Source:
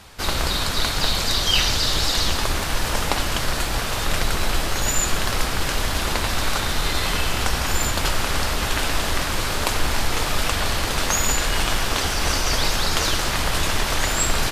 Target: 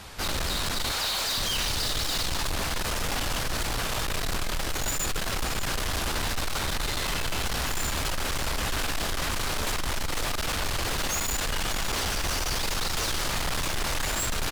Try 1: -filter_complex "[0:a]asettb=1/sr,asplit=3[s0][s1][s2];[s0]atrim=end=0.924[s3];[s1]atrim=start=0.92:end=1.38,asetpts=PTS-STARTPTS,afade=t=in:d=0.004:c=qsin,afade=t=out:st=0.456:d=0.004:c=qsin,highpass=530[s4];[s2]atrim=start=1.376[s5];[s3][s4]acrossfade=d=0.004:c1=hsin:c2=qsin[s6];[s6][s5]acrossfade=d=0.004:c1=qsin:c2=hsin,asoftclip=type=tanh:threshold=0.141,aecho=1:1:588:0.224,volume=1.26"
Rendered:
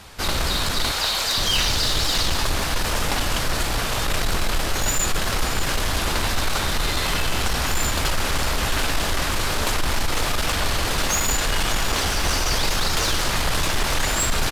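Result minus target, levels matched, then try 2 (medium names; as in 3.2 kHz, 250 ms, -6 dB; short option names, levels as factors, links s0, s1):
saturation: distortion -8 dB
-filter_complex "[0:a]asettb=1/sr,asplit=3[s0][s1][s2];[s0]atrim=end=0.924[s3];[s1]atrim=start=0.92:end=1.38,asetpts=PTS-STARTPTS,afade=t=in:d=0.004:c=qsin,afade=t=out:st=0.456:d=0.004:c=qsin,highpass=530[s4];[s2]atrim=start=1.376[s5];[s3][s4]acrossfade=d=0.004:c1=hsin:c2=qsin[s6];[s6][s5]acrossfade=d=0.004:c1=qsin:c2=hsin,asoftclip=type=tanh:threshold=0.0398,aecho=1:1:588:0.224,volume=1.26"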